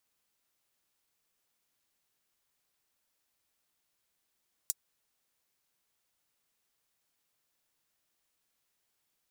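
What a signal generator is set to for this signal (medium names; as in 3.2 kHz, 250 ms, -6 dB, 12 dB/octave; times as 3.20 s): closed hi-hat, high-pass 6.6 kHz, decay 0.04 s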